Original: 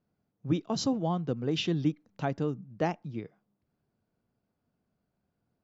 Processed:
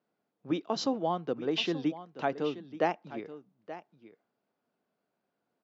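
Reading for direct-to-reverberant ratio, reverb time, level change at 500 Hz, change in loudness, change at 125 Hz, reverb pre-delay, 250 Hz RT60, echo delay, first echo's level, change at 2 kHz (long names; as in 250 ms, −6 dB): no reverb audible, no reverb audible, +2.0 dB, −1.0 dB, −11.0 dB, no reverb audible, no reverb audible, 878 ms, −14.5 dB, +3.0 dB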